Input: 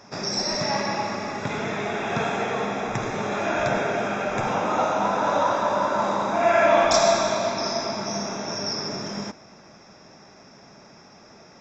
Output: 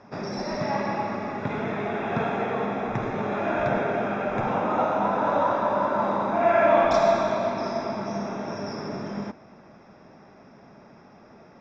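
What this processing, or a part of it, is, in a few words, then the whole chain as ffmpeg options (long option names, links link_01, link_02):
phone in a pocket: -af "lowpass=4000,equalizer=frequency=240:width_type=o:width=0.31:gain=2.5,highshelf=frequency=2500:gain=-10.5"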